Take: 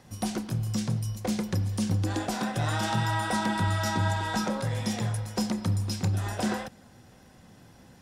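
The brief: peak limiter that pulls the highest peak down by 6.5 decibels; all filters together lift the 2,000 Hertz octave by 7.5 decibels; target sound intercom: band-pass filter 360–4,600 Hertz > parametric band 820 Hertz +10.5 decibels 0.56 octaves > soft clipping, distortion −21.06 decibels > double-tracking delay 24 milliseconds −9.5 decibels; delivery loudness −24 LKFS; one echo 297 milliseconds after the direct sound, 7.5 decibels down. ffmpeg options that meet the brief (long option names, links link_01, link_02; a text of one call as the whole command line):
ffmpeg -i in.wav -filter_complex "[0:a]equalizer=frequency=2000:width_type=o:gain=8.5,alimiter=limit=-19.5dB:level=0:latency=1,highpass=360,lowpass=4600,equalizer=frequency=820:width_type=o:width=0.56:gain=10.5,aecho=1:1:297:0.422,asoftclip=threshold=-17.5dB,asplit=2[link_01][link_02];[link_02]adelay=24,volume=-9.5dB[link_03];[link_01][link_03]amix=inputs=2:normalize=0,volume=5.5dB" out.wav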